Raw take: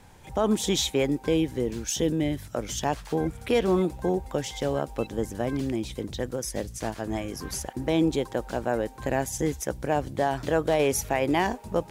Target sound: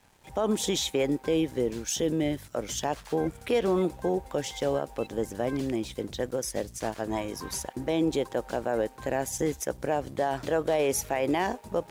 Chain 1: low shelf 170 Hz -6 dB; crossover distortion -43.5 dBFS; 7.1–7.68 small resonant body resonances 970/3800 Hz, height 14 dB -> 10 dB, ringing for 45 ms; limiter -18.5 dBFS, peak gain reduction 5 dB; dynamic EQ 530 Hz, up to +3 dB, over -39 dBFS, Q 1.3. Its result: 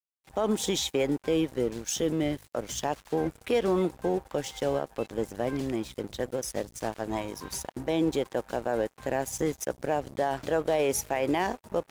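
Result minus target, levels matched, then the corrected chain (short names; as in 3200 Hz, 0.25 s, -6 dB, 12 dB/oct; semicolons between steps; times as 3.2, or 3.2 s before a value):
crossover distortion: distortion +11 dB
low shelf 170 Hz -6 dB; crossover distortion -55.5 dBFS; 7.1–7.68 small resonant body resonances 970/3800 Hz, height 14 dB -> 10 dB, ringing for 45 ms; limiter -18.5 dBFS, peak gain reduction 5.5 dB; dynamic EQ 530 Hz, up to +3 dB, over -39 dBFS, Q 1.3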